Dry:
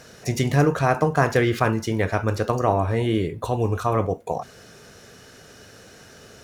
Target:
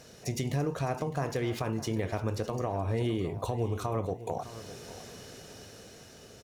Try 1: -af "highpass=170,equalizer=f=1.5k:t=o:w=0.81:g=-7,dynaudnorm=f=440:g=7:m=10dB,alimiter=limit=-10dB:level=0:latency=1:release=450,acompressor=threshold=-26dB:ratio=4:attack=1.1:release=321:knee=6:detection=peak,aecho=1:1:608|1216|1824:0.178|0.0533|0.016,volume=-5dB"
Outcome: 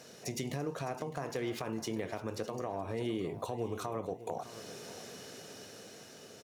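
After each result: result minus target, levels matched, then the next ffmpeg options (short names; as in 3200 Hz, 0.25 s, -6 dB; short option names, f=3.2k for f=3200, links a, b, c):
compressor: peak gain reduction +4.5 dB; 125 Hz band -4.5 dB
-af "highpass=170,equalizer=f=1.5k:t=o:w=0.81:g=-7,dynaudnorm=f=440:g=7:m=10dB,alimiter=limit=-10dB:level=0:latency=1:release=450,acompressor=threshold=-20dB:ratio=4:attack=1.1:release=321:knee=6:detection=peak,aecho=1:1:608|1216|1824:0.178|0.0533|0.016,volume=-5dB"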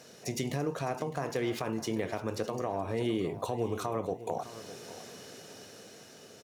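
125 Hz band -5.0 dB
-af "equalizer=f=1.5k:t=o:w=0.81:g=-7,dynaudnorm=f=440:g=7:m=10dB,alimiter=limit=-10dB:level=0:latency=1:release=450,acompressor=threshold=-20dB:ratio=4:attack=1.1:release=321:knee=6:detection=peak,aecho=1:1:608|1216|1824:0.178|0.0533|0.016,volume=-5dB"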